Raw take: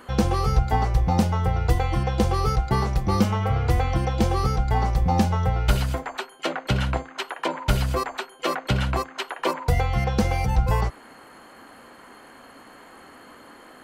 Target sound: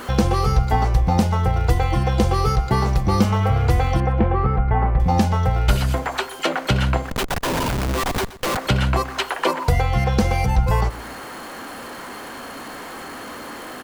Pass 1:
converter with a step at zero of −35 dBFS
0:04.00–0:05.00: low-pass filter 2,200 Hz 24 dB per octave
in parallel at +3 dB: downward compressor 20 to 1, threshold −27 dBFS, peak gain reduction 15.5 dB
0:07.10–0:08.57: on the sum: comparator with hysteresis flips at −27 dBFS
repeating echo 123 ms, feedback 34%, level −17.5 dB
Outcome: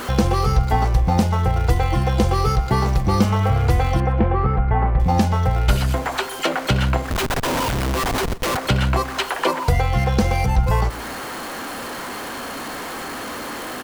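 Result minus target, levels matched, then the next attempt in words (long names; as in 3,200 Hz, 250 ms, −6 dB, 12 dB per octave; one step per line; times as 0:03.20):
converter with a step at zero: distortion +7 dB
converter with a step at zero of −42.5 dBFS
0:04.00–0:05.00: low-pass filter 2,200 Hz 24 dB per octave
in parallel at +3 dB: downward compressor 20 to 1, threshold −27 dBFS, peak gain reduction 15.5 dB
0:07.10–0:08.57: on the sum: comparator with hysteresis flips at −27 dBFS
repeating echo 123 ms, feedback 34%, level −17.5 dB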